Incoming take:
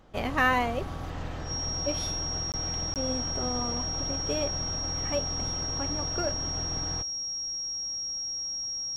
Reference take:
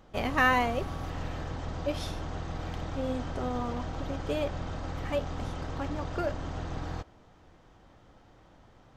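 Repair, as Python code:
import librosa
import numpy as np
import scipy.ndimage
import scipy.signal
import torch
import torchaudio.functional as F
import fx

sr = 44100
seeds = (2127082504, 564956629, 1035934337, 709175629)

y = fx.notch(x, sr, hz=5600.0, q=30.0)
y = fx.fix_interpolate(y, sr, at_s=(2.52, 2.94), length_ms=18.0)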